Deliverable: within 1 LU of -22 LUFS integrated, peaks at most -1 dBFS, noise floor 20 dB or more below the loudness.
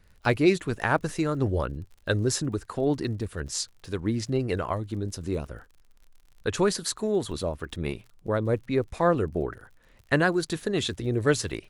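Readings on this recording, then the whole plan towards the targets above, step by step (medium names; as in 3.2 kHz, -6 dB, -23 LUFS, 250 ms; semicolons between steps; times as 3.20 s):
tick rate 49 per s; loudness -27.5 LUFS; peak level -8.5 dBFS; loudness target -22.0 LUFS
-> de-click; trim +5.5 dB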